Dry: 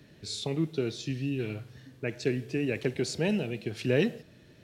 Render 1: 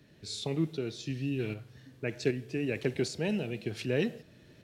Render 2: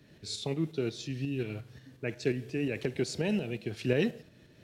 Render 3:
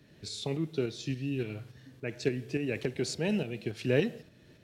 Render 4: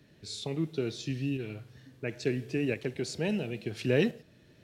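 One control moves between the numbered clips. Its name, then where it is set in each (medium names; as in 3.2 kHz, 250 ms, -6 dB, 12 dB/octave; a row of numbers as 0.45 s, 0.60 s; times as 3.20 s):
tremolo, rate: 1.3 Hz, 5.6 Hz, 3.5 Hz, 0.73 Hz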